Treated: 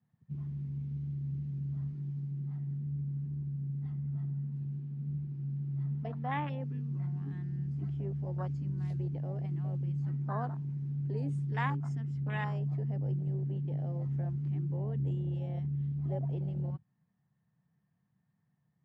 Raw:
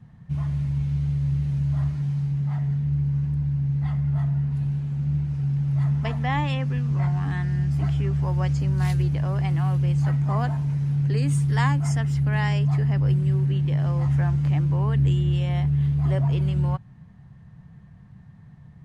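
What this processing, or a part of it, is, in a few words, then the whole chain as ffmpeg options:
over-cleaned archive recording: -filter_complex "[0:a]highpass=170,lowpass=7100,afwtdn=0.0355,asettb=1/sr,asplit=3[s0][s1][s2];[s0]atrim=end=4.804[s3];[s1]atrim=start=4.8:end=6.61,asetpts=PTS-STARTPTS,afade=t=in:d=0.004:c=qsin,afade=t=out:st=1.806:d=0.004:c=qsin,lowpass=f=5700:w=0.5412,lowpass=f=5700:w=1.3066[s4];[s2]atrim=start=6.606[s5];[s3][s4]acrossfade=d=0.004:c1=hsin:c2=qsin[s6];[s6][s5]acrossfade=d=0.004:c1=qsin:c2=hsin,volume=0.422"

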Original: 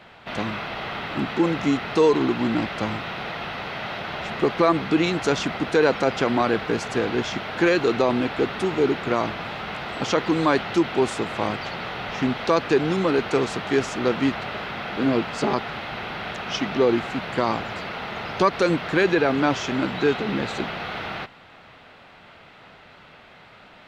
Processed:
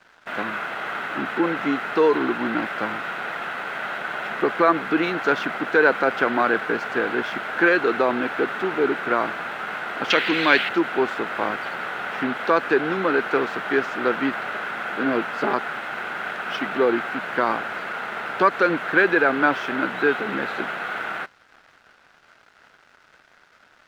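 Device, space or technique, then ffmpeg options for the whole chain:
pocket radio on a weak battery: -filter_complex "[0:a]asettb=1/sr,asplit=3[s0][s1][s2];[s0]atrim=end=10.104[s3];[s1]atrim=start=10.1:end=10.69,asetpts=PTS-STARTPTS,afade=t=in:d=0.004:c=qsin,afade=t=out:st=0.586:d=0.004:c=qsin,highshelf=f=1800:t=q:w=1.5:g=11[s4];[s2]atrim=start=10.686[s5];[s3][s4]acrossfade=d=0.004:c1=hsin:c2=qsin[s6];[s6][s5]acrossfade=d=0.004:c1=qsin:c2=hsin,highpass=250,lowpass=3000,aeval=exprs='sgn(val(0))*max(abs(val(0))-0.00376,0)':c=same,equalizer=f=1500:t=o:w=0.51:g=10"

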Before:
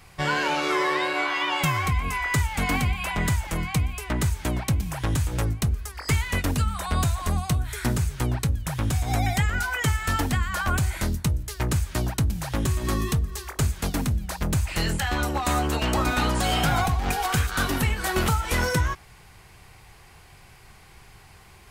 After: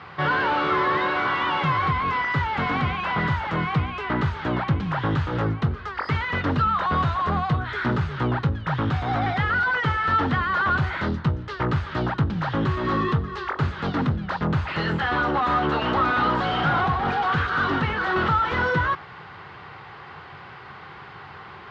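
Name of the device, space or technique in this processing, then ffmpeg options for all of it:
overdrive pedal into a guitar cabinet: -filter_complex "[0:a]asplit=2[s0][s1];[s1]highpass=f=720:p=1,volume=17.8,asoftclip=type=tanh:threshold=0.251[s2];[s0][s2]amix=inputs=2:normalize=0,lowpass=f=1300:p=1,volume=0.501,highpass=81,equalizer=f=91:t=q:w=4:g=5,equalizer=f=150:t=q:w=4:g=6,equalizer=f=670:t=q:w=4:g=-5,equalizer=f=1300:t=q:w=4:g=5,equalizer=f=2400:t=q:w=4:g=-7,lowpass=f=3900:w=0.5412,lowpass=f=3900:w=1.3066,volume=0.841"

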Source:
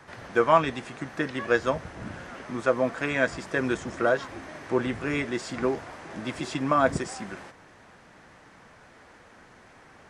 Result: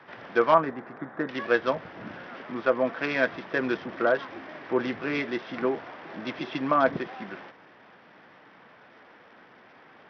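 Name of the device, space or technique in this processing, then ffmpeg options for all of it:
Bluetooth headset: -filter_complex "[0:a]asettb=1/sr,asplit=3[s0][s1][s2];[s0]atrim=end=0.544[s3];[s1]atrim=start=0.54:end=1.29,asetpts=PTS-STARTPTS,afade=t=in:d=0.004:c=qsin,afade=t=out:st=0.746:d=0.004:c=qsin,lowpass=f=1700:w=0.5412,lowpass=f=1700:w=1.3066[s4];[s2]atrim=start=1.286[s5];[s3][s4]acrossfade=d=0.004:c1=hsin:c2=qsin[s6];[s6][s5]acrossfade=d=0.004:c1=qsin:c2=hsin,highpass=190,aresample=8000,aresample=44100" -ar 44100 -c:a sbc -b:a 64k

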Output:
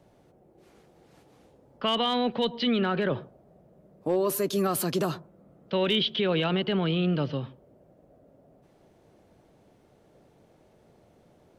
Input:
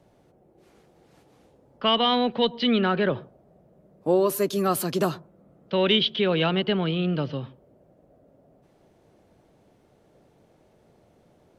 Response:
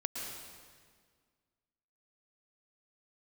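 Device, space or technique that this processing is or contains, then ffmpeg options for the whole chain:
clipper into limiter: -af "asoftclip=type=hard:threshold=0.237,alimiter=limit=0.133:level=0:latency=1:release=24"

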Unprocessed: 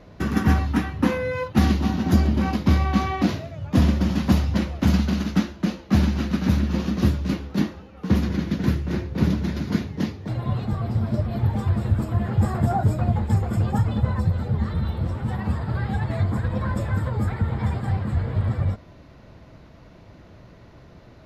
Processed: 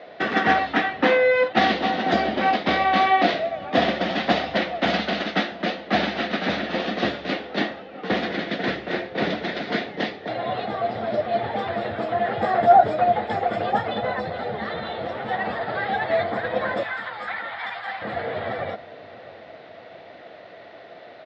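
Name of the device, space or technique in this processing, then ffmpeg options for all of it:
phone earpiece: -filter_complex "[0:a]asettb=1/sr,asplit=3[s0][s1][s2];[s0]atrim=end=16.834[s3];[s1]atrim=start=16.83:end=18.02,asetpts=PTS-STARTPTS,afade=t=in:d=0.004:c=qsin,afade=t=out:st=1.186:d=0.004:c=qsin,highpass=f=930:w=0.5412,highpass=f=930:w=1.3066[s4];[s2]atrim=start=18.016[s5];[s3][s4]acrossfade=d=0.004:c1=hsin:c2=qsin[s6];[s6][s5]acrossfade=d=0.004:c1=qsin:c2=hsin,highpass=480,equalizer=f=480:t=q:w=4:g=4,equalizer=f=700:t=q:w=4:g=10,equalizer=f=1000:t=q:w=4:g=-7,equalizer=f=1900:t=q:w=4:g=6,equalizer=f=3500:t=q:w=4:g=5,lowpass=f=4200:w=0.5412,lowpass=f=4200:w=1.3066,asplit=2[s7][s8];[s8]adelay=663,lowpass=f=940:p=1,volume=0.158,asplit=2[s9][s10];[s10]adelay=663,lowpass=f=940:p=1,volume=0.54,asplit=2[s11][s12];[s12]adelay=663,lowpass=f=940:p=1,volume=0.54,asplit=2[s13][s14];[s14]adelay=663,lowpass=f=940:p=1,volume=0.54,asplit=2[s15][s16];[s16]adelay=663,lowpass=f=940:p=1,volume=0.54[s17];[s7][s9][s11][s13][s15][s17]amix=inputs=6:normalize=0,volume=2.24"

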